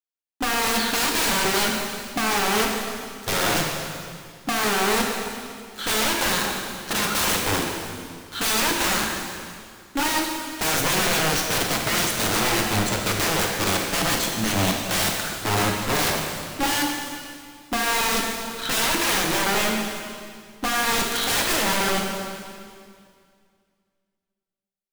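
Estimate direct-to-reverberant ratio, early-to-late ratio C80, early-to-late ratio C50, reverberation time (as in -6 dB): 0.0 dB, 3.5 dB, 2.0 dB, 2.2 s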